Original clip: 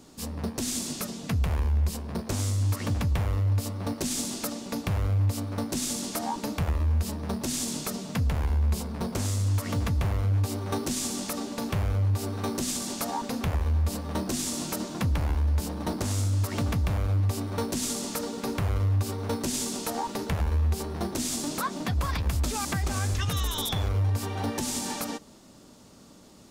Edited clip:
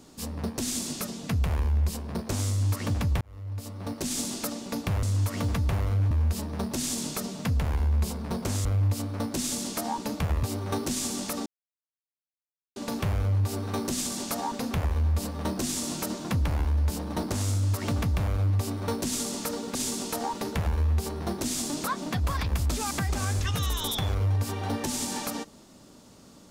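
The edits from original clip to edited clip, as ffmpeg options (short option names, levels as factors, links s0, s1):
-filter_complex "[0:a]asplit=8[s0][s1][s2][s3][s4][s5][s6][s7];[s0]atrim=end=3.21,asetpts=PTS-STARTPTS,afade=t=out:st=3.206:d=0.004:c=hsin[s8];[s1]atrim=start=3.21:end=5.032,asetpts=PTS-STARTPTS,afade=t=in:d=0.99[s9];[s2]atrim=start=9.348:end=10.432[s10];[s3]atrim=start=6.808:end=9.352[s11];[s4]atrim=start=5.028:end=6.812[s12];[s5]atrim=start=10.428:end=11.46,asetpts=PTS-STARTPTS,afade=t=out:st=1.028:d=0.004:c=hsin,apad=pad_dur=1.3[s13];[s6]atrim=start=11.46:end=18.452,asetpts=PTS-STARTPTS,afade=t=in:d=0.004:c=hsin[s14];[s7]atrim=start=19.488[s15];[s8][s9]concat=n=2:v=0:a=1[s16];[s16][s10]acrossfade=d=0.004:c1=hsin:c2=hsin[s17];[s17][s11]acrossfade=d=0.004:c1=hsin:c2=hsin[s18];[s18][s12]acrossfade=d=0.004:c1=hsin:c2=hsin[s19];[s13][s14]concat=n=2:v=0:a=1[s20];[s19][s20]acrossfade=d=0.004:c1=hsin:c2=hsin[s21];[s21][s15]acrossfade=d=0.004:c1=hsin:c2=hsin"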